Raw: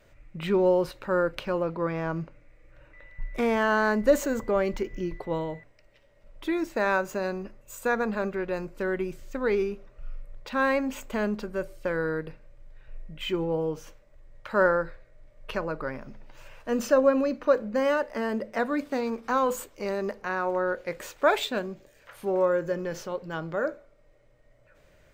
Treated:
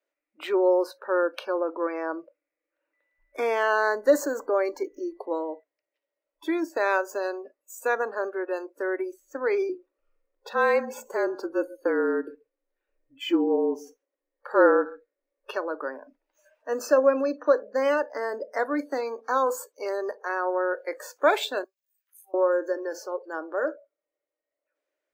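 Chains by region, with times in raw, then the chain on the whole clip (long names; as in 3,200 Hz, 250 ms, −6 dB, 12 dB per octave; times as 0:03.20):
0:09.69–0:15.51: parametric band 140 Hz +9.5 dB 3 octaves + frequency shifter −36 Hz + single-tap delay 136 ms −20 dB
0:21.64–0:22.34: Bessel high-pass filter 690 Hz + first difference
whole clip: elliptic high-pass filter 290 Hz, stop band 40 dB; noise reduction from a noise print of the clip's start 24 dB; level +1.5 dB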